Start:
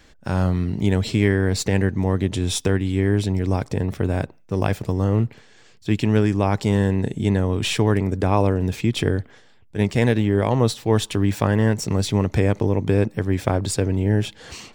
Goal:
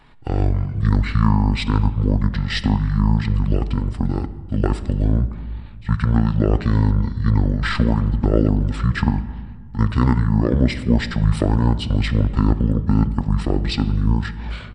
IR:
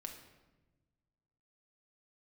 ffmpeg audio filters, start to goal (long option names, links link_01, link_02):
-filter_complex "[0:a]asetrate=23361,aresample=44100,atempo=1.88775,asplit=2[link_01][link_02];[link_02]highshelf=frequency=9000:gain=-11[link_03];[1:a]atrim=start_sample=2205,asetrate=29106,aresample=44100[link_04];[link_03][link_04]afir=irnorm=-1:irlink=0,volume=-4dB[link_05];[link_01][link_05]amix=inputs=2:normalize=0,volume=-1dB"